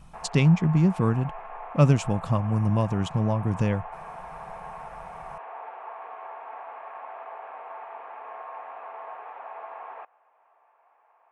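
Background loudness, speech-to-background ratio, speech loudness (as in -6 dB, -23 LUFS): -40.5 LUFS, 16.5 dB, -24.0 LUFS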